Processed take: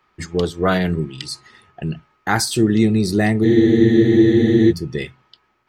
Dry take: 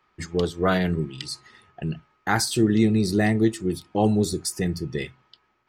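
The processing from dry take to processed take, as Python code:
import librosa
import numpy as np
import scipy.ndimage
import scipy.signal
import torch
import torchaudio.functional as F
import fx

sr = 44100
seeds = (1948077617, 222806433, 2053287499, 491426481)

y = fx.spec_freeze(x, sr, seeds[0], at_s=3.45, hold_s=1.25)
y = y * librosa.db_to_amplitude(4.0)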